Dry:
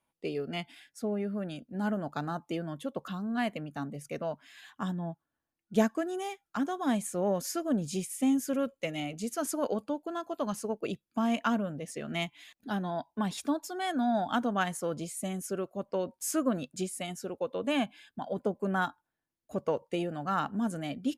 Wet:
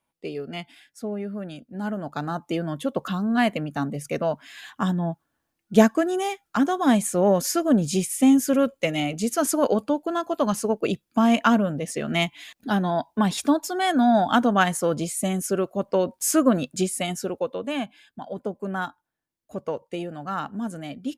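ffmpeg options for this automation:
ffmpeg -i in.wav -af "volume=10dB,afade=type=in:start_time=1.92:duration=1:silence=0.398107,afade=type=out:start_time=17.2:duration=0.47:silence=0.354813" out.wav

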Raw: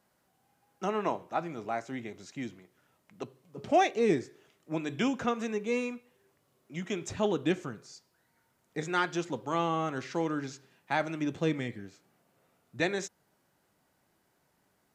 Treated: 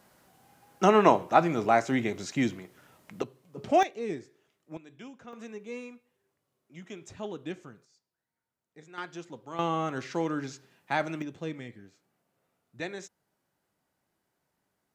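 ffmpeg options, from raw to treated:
ffmpeg -i in.wav -af "asetnsamples=nb_out_samples=441:pad=0,asendcmd='3.22 volume volume 1.5dB;3.83 volume volume -8dB;4.77 volume volume -17dB;5.33 volume volume -9dB;7.85 volume volume -17dB;8.98 volume volume -9dB;9.59 volume volume 1dB;11.22 volume volume -7dB',volume=11dB" out.wav

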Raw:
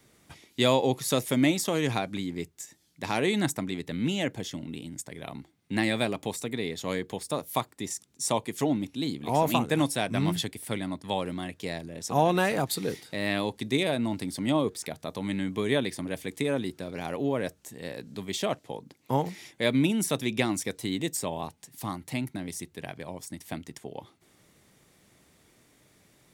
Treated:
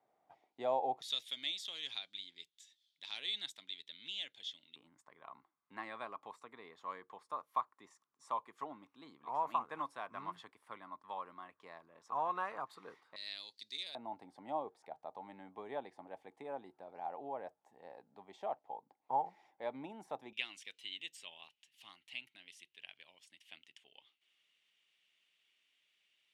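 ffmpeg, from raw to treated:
ffmpeg -i in.wav -af "asetnsamples=nb_out_samples=441:pad=0,asendcmd='1.02 bandpass f 3500;4.76 bandpass f 1100;13.16 bandpass f 4400;13.95 bandpass f 810;20.33 bandpass f 2900',bandpass=frequency=750:width_type=q:width=6.3:csg=0" out.wav

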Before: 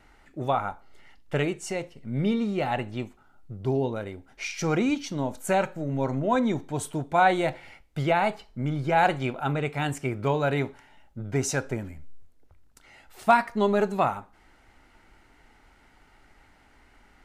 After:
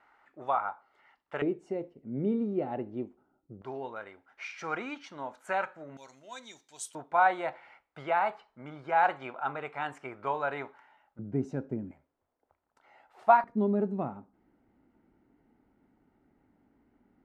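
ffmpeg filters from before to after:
ffmpeg -i in.wav -af "asetnsamples=nb_out_samples=441:pad=0,asendcmd='1.42 bandpass f 340;3.62 bandpass f 1300;5.97 bandpass f 6000;6.95 bandpass f 1100;11.19 bandpass f 240;11.91 bandpass f 820;13.44 bandpass f 240',bandpass=frequency=1100:width_type=q:width=1.5:csg=0" out.wav

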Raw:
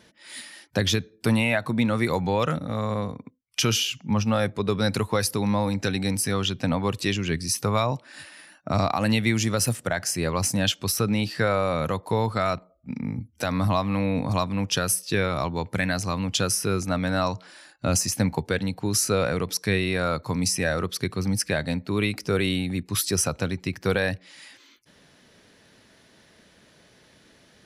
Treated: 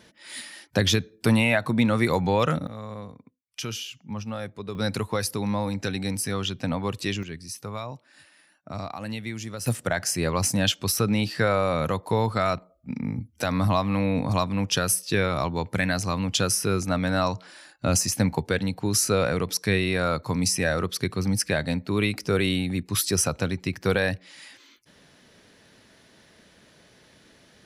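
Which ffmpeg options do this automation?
ffmpeg -i in.wav -af "asetnsamples=nb_out_samples=441:pad=0,asendcmd='2.67 volume volume -10dB;4.75 volume volume -3dB;7.23 volume volume -11dB;9.66 volume volume 0.5dB',volume=1.5dB" out.wav

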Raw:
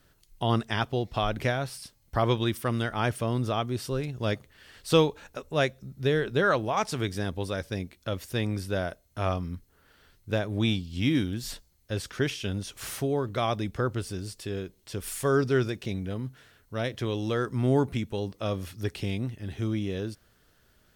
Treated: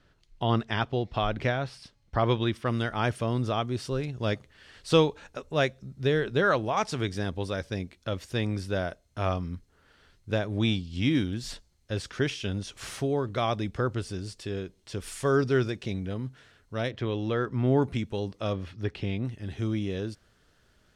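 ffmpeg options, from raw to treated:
ffmpeg -i in.wav -af "asetnsamples=nb_out_samples=441:pad=0,asendcmd='2.68 lowpass f 7600;16.91 lowpass f 3400;17.82 lowpass f 7400;18.53 lowpass f 3400;19.25 lowpass f 8400',lowpass=4400" out.wav

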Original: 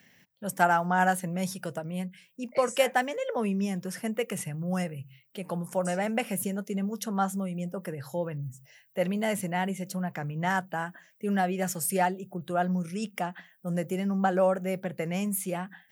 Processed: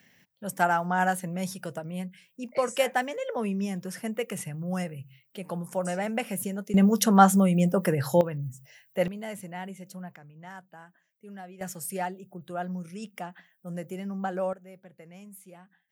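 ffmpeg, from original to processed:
ffmpeg -i in.wav -af "asetnsamples=nb_out_samples=441:pad=0,asendcmd='6.74 volume volume 11dB;8.21 volume volume 2dB;9.08 volume volume -8.5dB;10.16 volume volume -16.5dB;11.61 volume volume -6dB;14.53 volume volume -17.5dB',volume=-1dB" out.wav

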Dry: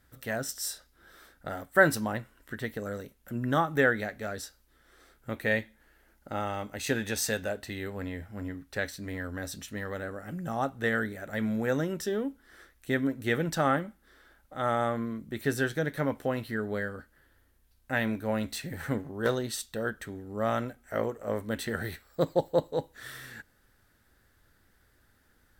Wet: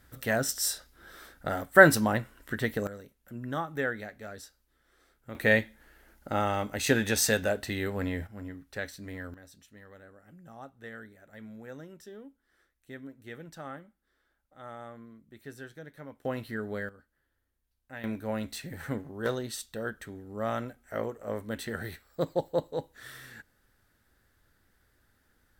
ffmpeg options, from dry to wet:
ffmpeg -i in.wav -af "asetnsamples=nb_out_samples=441:pad=0,asendcmd='2.87 volume volume -7dB;5.35 volume volume 4.5dB;8.27 volume volume -4dB;9.34 volume volume -16dB;16.25 volume volume -3dB;16.89 volume volume -14dB;18.04 volume volume -3dB',volume=5dB" out.wav

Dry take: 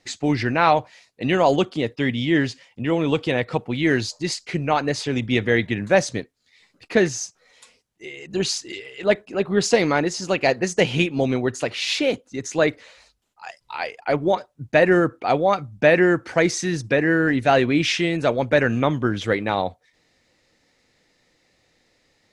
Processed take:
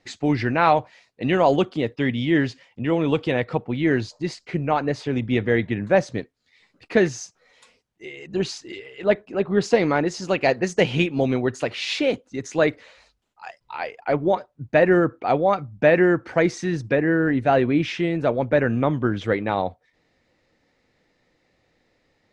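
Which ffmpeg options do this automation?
ffmpeg -i in.wav -af "asetnsamples=nb_out_samples=441:pad=0,asendcmd='3.53 lowpass f 1500;6.18 lowpass f 3200;8.31 lowpass f 1900;10.08 lowpass f 3500;13.48 lowpass f 1900;16.95 lowpass f 1200;18.93 lowpass f 1900',lowpass=frequency=2800:poles=1" out.wav

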